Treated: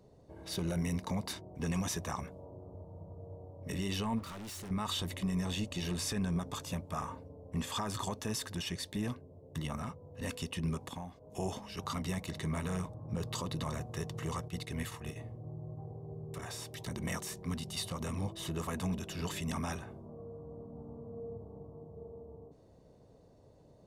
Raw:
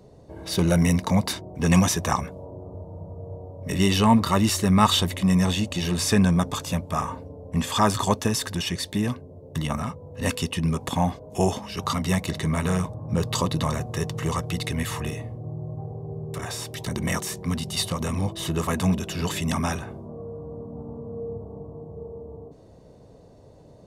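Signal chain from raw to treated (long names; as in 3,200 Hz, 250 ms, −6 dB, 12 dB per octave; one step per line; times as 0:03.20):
0:10.77–0:11.36: downward compressor 6 to 1, threshold −30 dBFS, peak gain reduction 12.5 dB
brickwall limiter −15.5 dBFS, peak gain reduction 11.5 dB
0:04.19–0:04.71: gain into a clipping stage and back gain 32.5 dB
amplitude modulation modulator 220 Hz, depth 20%
0:14.48–0:15.16: noise gate −30 dBFS, range −9 dB
level −9 dB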